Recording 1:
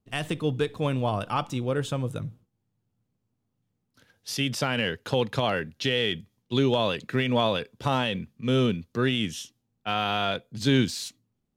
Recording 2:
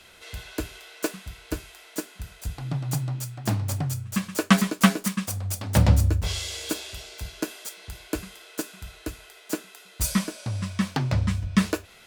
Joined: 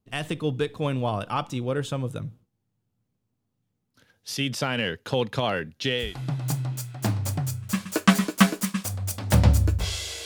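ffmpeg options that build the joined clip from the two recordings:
ffmpeg -i cue0.wav -i cue1.wav -filter_complex "[0:a]apad=whole_dur=10.25,atrim=end=10.25,atrim=end=6.18,asetpts=PTS-STARTPTS[link_01];[1:a]atrim=start=2.35:end=6.68,asetpts=PTS-STARTPTS[link_02];[link_01][link_02]acrossfade=duration=0.26:curve1=tri:curve2=tri" out.wav

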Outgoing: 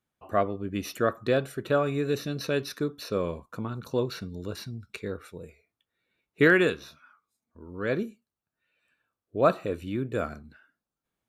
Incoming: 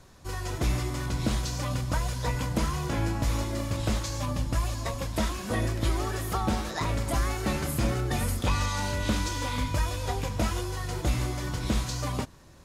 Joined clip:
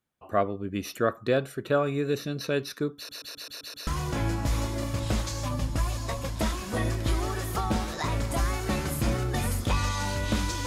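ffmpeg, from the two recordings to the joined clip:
ffmpeg -i cue0.wav -i cue1.wav -filter_complex "[0:a]apad=whole_dur=10.66,atrim=end=10.66,asplit=7[link_01][link_02][link_03][link_04][link_05][link_06][link_07];[link_01]atrim=end=3.092[link_08];[link_02]atrim=start=2.958:end=3.092[link_09];[link_03]atrim=start=2.958:end=3.092[link_10];[link_04]atrim=start=2.958:end=3.092[link_11];[link_05]atrim=start=2.958:end=3.092[link_12];[link_06]atrim=start=2.958:end=3.092[link_13];[link_07]atrim=start=2.958:end=3.092[link_14];[1:a]atrim=start=2.638:end=9.43[link_15];[link_08][link_09]acrossfade=duration=0.004:curve1=hsin:curve2=hsin[link_16];[link_16][link_10]acrossfade=duration=0.004:curve1=hsin:curve2=hsin[link_17];[link_17][link_11]acrossfade=duration=0.004:curve1=hsin:curve2=hsin[link_18];[link_18][link_12]acrossfade=duration=0.004:curve1=hsin:curve2=hsin[link_19];[link_19][link_13]acrossfade=duration=0.004:curve1=hsin:curve2=hsin[link_20];[link_20][link_14]acrossfade=duration=0.004:curve1=hsin:curve2=hsin[link_21];[link_21][link_15]acrossfade=duration=0.004:curve1=hsin:curve2=hsin" out.wav

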